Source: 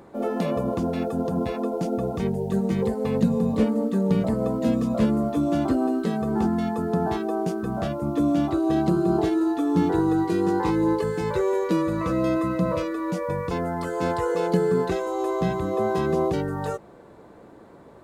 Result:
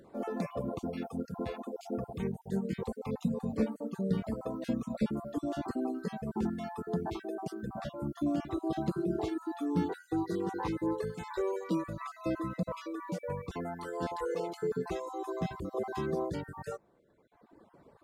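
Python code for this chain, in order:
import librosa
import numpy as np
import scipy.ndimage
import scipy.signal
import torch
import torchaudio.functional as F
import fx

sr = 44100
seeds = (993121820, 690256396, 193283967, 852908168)

y = fx.spec_dropout(x, sr, seeds[0], share_pct=25)
y = fx.dereverb_blind(y, sr, rt60_s=1.9)
y = F.gain(torch.from_numpy(y), -7.5).numpy()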